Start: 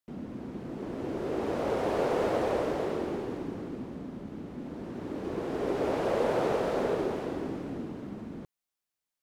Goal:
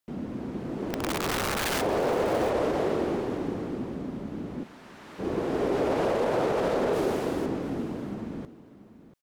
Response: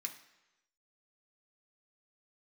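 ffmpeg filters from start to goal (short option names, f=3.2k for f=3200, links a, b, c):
-filter_complex "[0:a]alimiter=limit=-22.5dB:level=0:latency=1:release=30,acontrast=23,asplit=3[a][b][c];[a]afade=t=out:st=0.9:d=0.02[d];[b]aeval=exprs='(mod(14.1*val(0)+1,2)-1)/14.1':c=same,afade=t=in:st=0.9:d=0.02,afade=t=out:st=1.8:d=0.02[e];[c]afade=t=in:st=1.8:d=0.02[f];[d][e][f]amix=inputs=3:normalize=0,asplit=3[g][h][i];[g]afade=t=out:st=4.63:d=0.02[j];[h]highpass=1.2k,afade=t=in:st=4.63:d=0.02,afade=t=out:st=5.18:d=0.02[k];[i]afade=t=in:st=5.18:d=0.02[l];[j][k][l]amix=inputs=3:normalize=0,asettb=1/sr,asplit=3[m][n][o];[m]atrim=end=6.934[p];[n]atrim=start=6.93:end=7.46,asetpts=PTS-STARTPTS,afade=t=in:d=0.004:c=qsin,afade=t=out:st=0.526:d=0.004:c=qsin,highshelf=f=6.3k:g=12[q];[o]atrim=start=7.456[r];[p][q]acrossfade=d=0.004:c1=hsin:c2=qsin[s];[s][r]acrossfade=d=0.004:c1=qsin:c2=hsin,aecho=1:1:687:0.158"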